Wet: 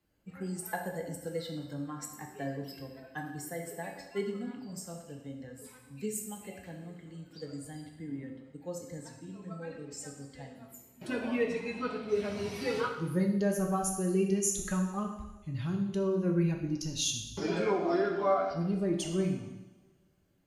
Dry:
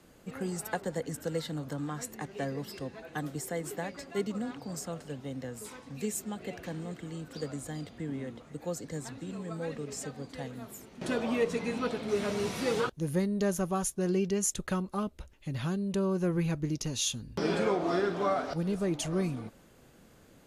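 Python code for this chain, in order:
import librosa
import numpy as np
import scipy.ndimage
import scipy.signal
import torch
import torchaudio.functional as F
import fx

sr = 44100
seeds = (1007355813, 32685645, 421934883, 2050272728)

y = fx.bin_expand(x, sr, power=1.5)
y = fx.rev_double_slope(y, sr, seeds[0], early_s=0.99, late_s=2.8, knee_db=-25, drr_db=1.5)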